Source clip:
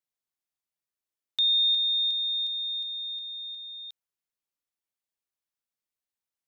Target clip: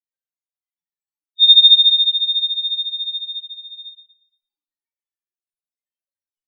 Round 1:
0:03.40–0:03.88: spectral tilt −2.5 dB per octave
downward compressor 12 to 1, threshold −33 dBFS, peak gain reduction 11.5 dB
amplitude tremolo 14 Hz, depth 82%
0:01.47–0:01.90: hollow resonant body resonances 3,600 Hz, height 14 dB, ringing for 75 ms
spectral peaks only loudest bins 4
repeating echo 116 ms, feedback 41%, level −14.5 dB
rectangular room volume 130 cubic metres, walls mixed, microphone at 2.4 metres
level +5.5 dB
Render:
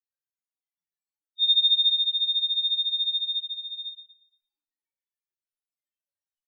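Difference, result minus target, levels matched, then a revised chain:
downward compressor: peak gain reduction +11.5 dB
0:03.40–0:03.88: spectral tilt −2.5 dB per octave
amplitude tremolo 14 Hz, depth 82%
0:01.47–0:01.90: hollow resonant body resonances 3,600 Hz, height 14 dB, ringing for 75 ms
spectral peaks only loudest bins 4
repeating echo 116 ms, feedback 41%, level −14.5 dB
rectangular room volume 130 cubic metres, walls mixed, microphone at 2.4 metres
level +5.5 dB

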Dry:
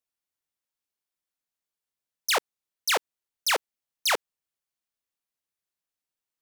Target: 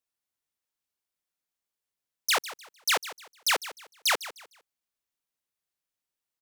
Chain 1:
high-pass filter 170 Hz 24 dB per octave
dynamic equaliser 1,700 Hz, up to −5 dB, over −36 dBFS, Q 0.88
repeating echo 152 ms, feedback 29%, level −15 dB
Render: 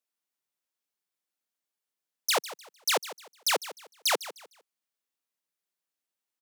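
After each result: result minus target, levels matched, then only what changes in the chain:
500 Hz band +5.0 dB; 125 Hz band −3.0 dB
change: dynamic equaliser 490 Hz, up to −5 dB, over −36 dBFS, Q 0.88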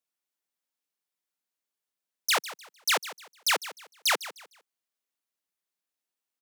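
125 Hz band −5.0 dB
remove: high-pass filter 170 Hz 24 dB per octave

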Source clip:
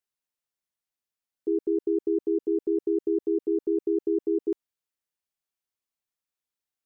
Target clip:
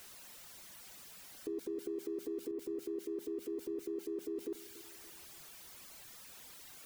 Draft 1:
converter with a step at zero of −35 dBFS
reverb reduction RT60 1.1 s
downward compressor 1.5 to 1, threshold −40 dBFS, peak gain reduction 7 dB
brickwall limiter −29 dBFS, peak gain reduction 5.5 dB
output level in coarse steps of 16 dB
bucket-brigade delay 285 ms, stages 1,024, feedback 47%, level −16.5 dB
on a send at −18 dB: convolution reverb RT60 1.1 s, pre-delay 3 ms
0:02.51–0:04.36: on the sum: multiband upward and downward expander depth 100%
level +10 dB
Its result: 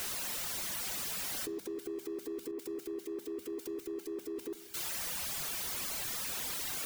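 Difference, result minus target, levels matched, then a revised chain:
converter with a step at zero: distortion +8 dB
converter with a step at zero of −43.5 dBFS
reverb reduction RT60 1.1 s
downward compressor 1.5 to 1, threshold −40 dBFS, peak gain reduction 6.5 dB
brickwall limiter −29 dBFS, peak gain reduction 5.5 dB
output level in coarse steps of 16 dB
bucket-brigade delay 285 ms, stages 1,024, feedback 47%, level −16.5 dB
on a send at −18 dB: convolution reverb RT60 1.1 s, pre-delay 3 ms
0:02.51–0:04.36: on the sum: multiband upward and downward expander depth 100%
level +10 dB

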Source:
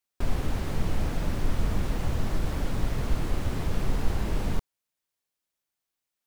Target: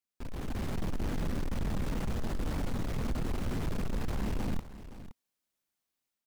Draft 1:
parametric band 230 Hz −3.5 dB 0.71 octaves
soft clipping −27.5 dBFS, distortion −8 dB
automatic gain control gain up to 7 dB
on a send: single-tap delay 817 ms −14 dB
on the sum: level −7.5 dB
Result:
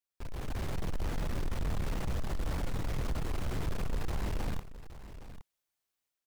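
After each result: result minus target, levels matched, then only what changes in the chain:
echo 298 ms late; 250 Hz band −4.0 dB
change: single-tap delay 519 ms −14 dB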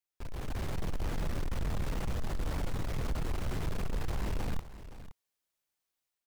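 250 Hz band −4.0 dB
change: parametric band 230 Hz +6 dB 0.71 octaves

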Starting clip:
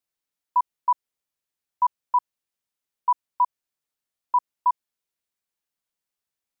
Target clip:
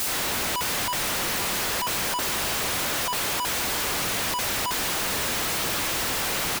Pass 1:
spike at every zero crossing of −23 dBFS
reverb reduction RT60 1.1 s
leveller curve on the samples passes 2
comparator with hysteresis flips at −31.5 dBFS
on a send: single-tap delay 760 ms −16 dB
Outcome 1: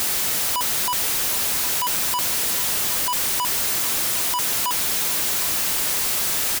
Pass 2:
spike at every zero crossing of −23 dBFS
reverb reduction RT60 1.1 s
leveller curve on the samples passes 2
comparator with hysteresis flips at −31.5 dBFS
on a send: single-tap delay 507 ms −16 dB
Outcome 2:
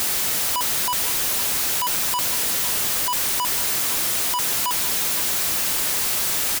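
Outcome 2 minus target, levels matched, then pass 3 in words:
spike at every zero crossing: distortion +9 dB
spike at every zero crossing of −32 dBFS
reverb reduction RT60 1.1 s
leveller curve on the samples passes 2
comparator with hysteresis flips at −31.5 dBFS
on a send: single-tap delay 507 ms −16 dB

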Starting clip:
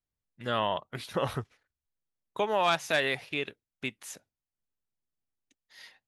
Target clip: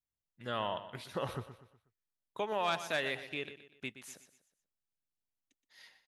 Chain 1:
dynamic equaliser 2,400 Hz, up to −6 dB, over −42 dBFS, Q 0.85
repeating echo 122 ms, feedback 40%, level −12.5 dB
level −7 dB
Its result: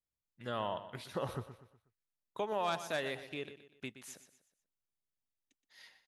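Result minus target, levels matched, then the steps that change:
2,000 Hz band −2.5 dB
remove: dynamic equaliser 2,400 Hz, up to −6 dB, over −42 dBFS, Q 0.85

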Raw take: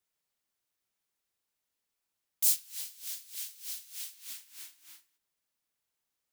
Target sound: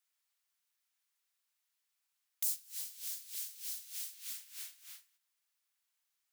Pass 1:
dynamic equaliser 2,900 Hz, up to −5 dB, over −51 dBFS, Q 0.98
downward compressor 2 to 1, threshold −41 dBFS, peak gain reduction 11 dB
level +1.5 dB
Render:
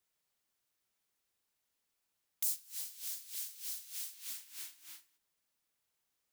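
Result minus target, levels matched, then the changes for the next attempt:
1,000 Hz band +3.0 dB
add after dynamic equaliser: high-pass filter 1,100 Hz 12 dB per octave

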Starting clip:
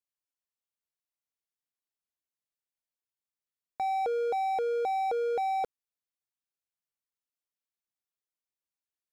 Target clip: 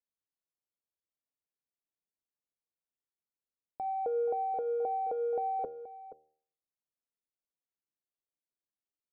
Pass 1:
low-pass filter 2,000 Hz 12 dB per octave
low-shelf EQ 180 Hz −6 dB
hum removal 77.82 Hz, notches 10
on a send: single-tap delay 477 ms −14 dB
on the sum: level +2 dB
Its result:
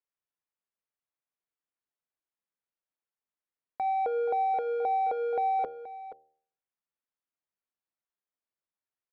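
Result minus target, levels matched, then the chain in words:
2,000 Hz band +12.5 dB
low-pass filter 580 Hz 12 dB per octave
low-shelf EQ 180 Hz −6 dB
hum removal 77.82 Hz, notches 10
on a send: single-tap delay 477 ms −14 dB
on the sum: level +2 dB

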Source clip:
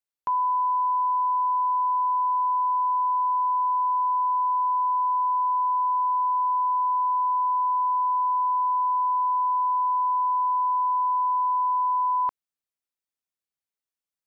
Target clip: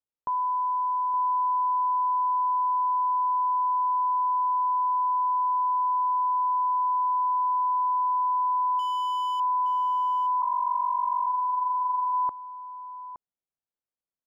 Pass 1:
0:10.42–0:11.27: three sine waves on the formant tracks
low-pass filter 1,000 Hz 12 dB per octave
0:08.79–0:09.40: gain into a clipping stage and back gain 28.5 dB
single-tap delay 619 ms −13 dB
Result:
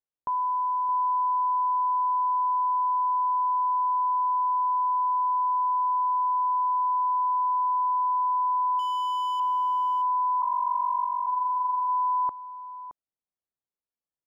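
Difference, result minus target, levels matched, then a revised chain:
echo 248 ms early
0:10.42–0:11.27: three sine waves on the formant tracks
low-pass filter 1,000 Hz 12 dB per octave
0:08.79–0:09.40: gain into a clipping stage and back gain 28.5 dB
single-tap delay 867 ms −13 dB

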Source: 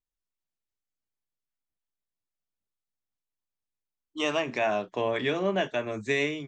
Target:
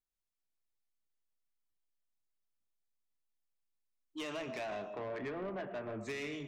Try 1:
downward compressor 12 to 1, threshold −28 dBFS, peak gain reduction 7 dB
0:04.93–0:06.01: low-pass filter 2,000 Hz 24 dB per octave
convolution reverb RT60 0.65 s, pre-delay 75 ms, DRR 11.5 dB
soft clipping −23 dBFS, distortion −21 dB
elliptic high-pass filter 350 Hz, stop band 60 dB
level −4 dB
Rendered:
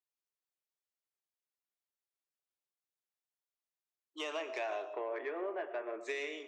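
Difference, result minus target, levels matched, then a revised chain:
soft clipping: distortion −10 dB; 250 Hz band −6.5 dB
downward compressor 12 to 1, threshold −28 dBFS, peak gain reduction 7 dB
0:04.93–0:06.01: low-pass filter 2,000 Hz 24 dB per octave
convolution reverb RT60 0.65 s, pre-delay 75 ms, DRR 11.5 dB
soft clipping −31.5 dBFS, distortion −11 dB
level −4 dB

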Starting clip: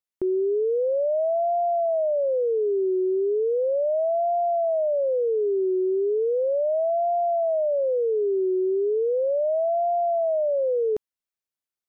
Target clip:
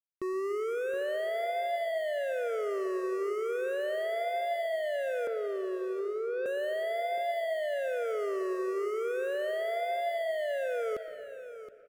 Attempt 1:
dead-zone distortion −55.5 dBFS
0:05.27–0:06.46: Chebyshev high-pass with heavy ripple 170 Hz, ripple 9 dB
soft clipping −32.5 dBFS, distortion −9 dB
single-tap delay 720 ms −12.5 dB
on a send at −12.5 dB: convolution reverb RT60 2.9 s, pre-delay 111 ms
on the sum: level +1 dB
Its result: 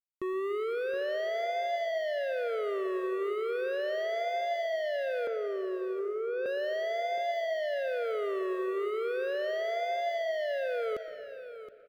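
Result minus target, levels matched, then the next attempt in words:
dead-zone distortion: distortion −10 dB
dead-zone distortion −46 dBFS
0:05.27–0:06.46: Chebyshev high-pass with heavy ripple 170 Hz, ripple 9 dB
soft clipping −32.5 dBFS, distortion −10 dB
single-tap delay 720 ms −12.5 dB
on a send at −12.5 dB: convolution reverb RT60 2.9 s, pre-delay 111 ms
on the sum: level +1 dB

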